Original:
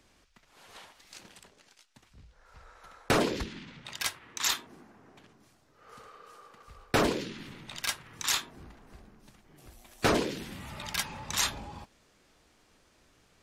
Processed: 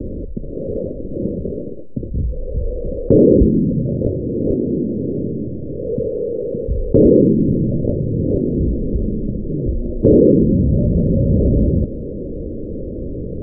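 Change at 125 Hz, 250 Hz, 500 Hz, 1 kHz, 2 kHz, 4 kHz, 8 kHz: +25.5 dB, +23.0 dB, +20.0 dB, under -10 dB, under -30 dB, under -40 dB, under -40 dB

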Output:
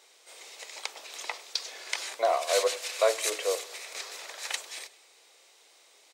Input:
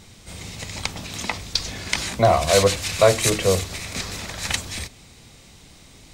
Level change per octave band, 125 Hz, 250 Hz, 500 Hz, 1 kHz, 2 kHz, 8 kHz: under -40 dB, -24.0 dB, -9.0 dB, -8.5 dB, -8.5 dB, -8.5 dB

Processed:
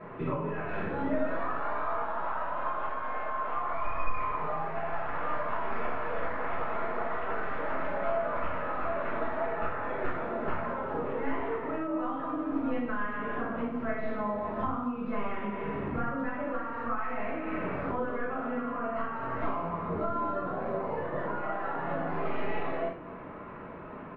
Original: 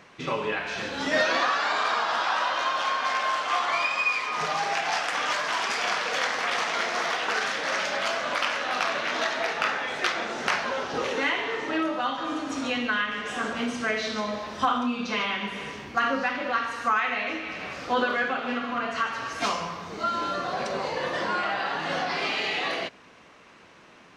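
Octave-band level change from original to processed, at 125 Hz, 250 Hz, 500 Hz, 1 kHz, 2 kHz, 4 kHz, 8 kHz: +4.5 dB, -1.0 dB, -2.0 dB, -5.5 dB, -12.0 dB, -26.0 dB, under -40 dB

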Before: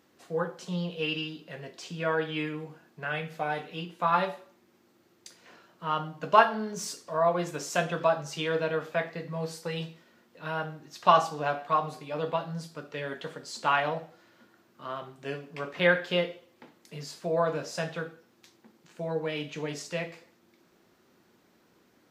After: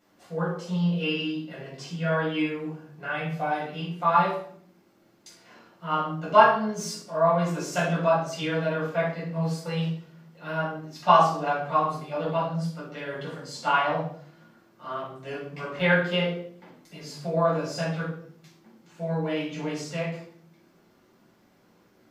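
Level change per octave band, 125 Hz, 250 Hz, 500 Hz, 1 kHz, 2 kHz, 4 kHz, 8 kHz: +7.5, +6.5, +2.5, +4.0, +2.5, +1.5, +0.5 dB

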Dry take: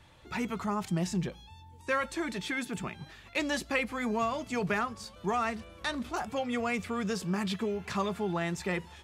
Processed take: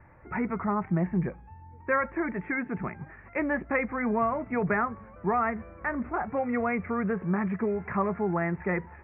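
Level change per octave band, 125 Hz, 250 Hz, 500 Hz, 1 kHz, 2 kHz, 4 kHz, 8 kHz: +4.0 dB, +4.0 dB, +4.0 dB, +4.0 dB, +2.5 dB, under -30 dB, under -35 dB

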